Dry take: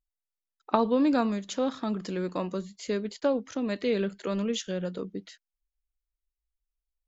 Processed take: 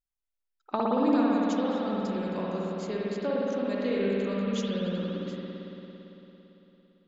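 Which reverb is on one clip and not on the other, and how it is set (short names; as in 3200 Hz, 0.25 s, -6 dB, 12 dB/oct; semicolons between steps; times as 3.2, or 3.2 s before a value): spring tank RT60 3.7 s, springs 56 ms, chirp 40 ms, DRR -5.5 dB; gain -6.5 dB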